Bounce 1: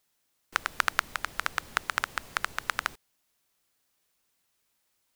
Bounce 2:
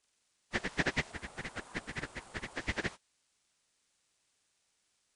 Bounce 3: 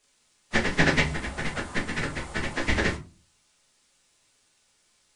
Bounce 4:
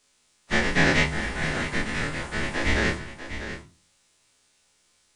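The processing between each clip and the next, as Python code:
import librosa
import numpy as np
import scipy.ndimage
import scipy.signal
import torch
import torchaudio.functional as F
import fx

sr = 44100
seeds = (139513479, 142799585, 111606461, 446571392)

y1 = fx.partial_stretch(x, sr, pct=81)
y1 = fx.spec_box(y1, sr, start_s=1.11, length_s=1.44, low_hz=810.0, high_hz=7400.0, gain_db=-6)
y1 = fx.ring_lfo(y1, sr, carrier_hz=830.0, swing_pct=20, hz=4.1)
y1 = F.gain(torch.from_numpy(y1), 1.5).numpy()
y2 = fx.room_shoebox(y1, sr, seeds[0], volume_m3=120.0, walls='furnished', distance_m=1.4)
y2 = F.gain(torch.from_numpy(y2), 8.0).numpy()
y3 = fx.spec_dilate(y2, sr, span_ms=60)
y3 = y3 + 10.0 ** (-11.0 / 20.0) * np.pad(y3, (int(645 * sr / 1000.0), 0))[:len(y3)]
y3 = F.gain(torch.from_numpy(y3), -3.0).numpy()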